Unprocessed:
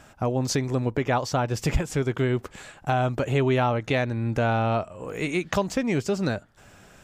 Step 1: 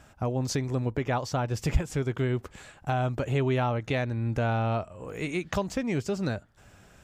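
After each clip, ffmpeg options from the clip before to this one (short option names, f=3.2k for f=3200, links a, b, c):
-af "equalizer=f=65:w=0.75:g=6.5,volume=-5dB"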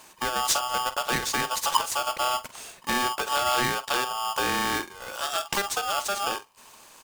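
-filter_complex "[0:a]crystalizer=i=3.5:c=0,asplit=2[a][b];[b]adelay=47,volume=-13dB[c];[a][c]amix=inputs=2:normalize=0,aeval=exprs='val(0)*sgn(sin(2*PI*1000*n/s))':c=same"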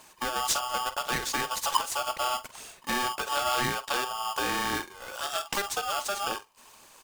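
-af "aphaser=in_gain=1:out_gain=1:delay=4.1:decay=0.31:speed=1.9:type=triangular,volume=-3.5dB"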